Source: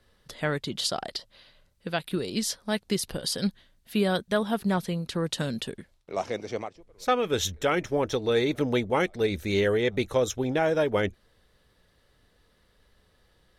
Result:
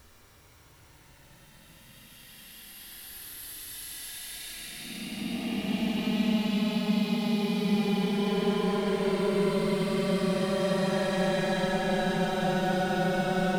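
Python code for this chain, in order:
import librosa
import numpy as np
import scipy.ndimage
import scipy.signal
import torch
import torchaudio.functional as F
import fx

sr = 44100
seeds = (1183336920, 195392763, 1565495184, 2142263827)

y = 10.0 ** (-28.5 / 20.0) * np.tanh(x / 10.0 ** (-28.5 / 20.0))
y = fx.dmg_noise_colour(y, sr, seeds[0], colour='pink', level_db=-60.0)
y = fx.paulstretch(y, sr, seeds[1], factor=46.0, window_s=0.05, from_s=3.83)
y = F.gain(torch.from_numpy(y), 3.5).numpy()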